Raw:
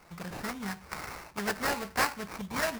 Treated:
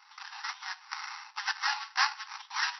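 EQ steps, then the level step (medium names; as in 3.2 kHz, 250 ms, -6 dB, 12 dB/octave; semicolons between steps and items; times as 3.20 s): brick-wall FIR band-pass 760–5900 Hz; treble shelf 4.2 kHz +10.5 dB; band-stop 2.3 kHz, Q 12; 0.0 dB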